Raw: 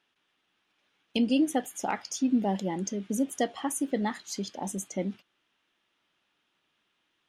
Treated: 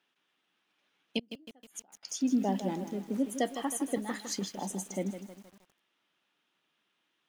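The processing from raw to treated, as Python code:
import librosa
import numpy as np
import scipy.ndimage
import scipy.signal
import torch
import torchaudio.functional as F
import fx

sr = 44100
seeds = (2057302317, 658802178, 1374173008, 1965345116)

y = fx.median_filter(x, sr, points=25, at=(2.68, 3.2))
y = scipy.signal.sosfilt(scipy.signal.butter(4, 130.0, 'highpass', fs=sr, output='sos'), y)
y = fx.gate_flip(y, sr, shuts_db=-26.0, range_db=-33, at=(1.19, 2.03))
y = fx.over_compress(y, sr, threshold_db=-32.0, ratio=-0.5, at=(3.95, 4.44), fade=0.02)
y = fx.echo_crushed(y, sr, ms=158, feedback_pct=55, bits=8, wet_db=-10)
y = y * librosa.db_to_amplitude(-2.5)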